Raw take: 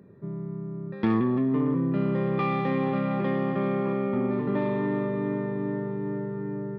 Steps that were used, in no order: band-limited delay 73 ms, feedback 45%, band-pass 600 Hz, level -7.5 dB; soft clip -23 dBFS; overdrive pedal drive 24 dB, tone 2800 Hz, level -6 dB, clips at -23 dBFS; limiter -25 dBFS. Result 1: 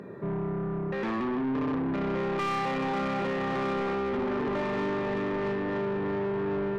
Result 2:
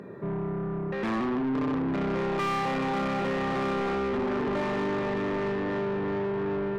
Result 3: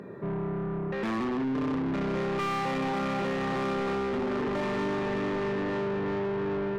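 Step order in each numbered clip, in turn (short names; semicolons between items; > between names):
limiter > soft clip > band-limited delay > overdrive pedal; soft clip > limiter > band-limited delay > overdrive pedal; band-limited delay > overdrive pedal > soft clip > limiter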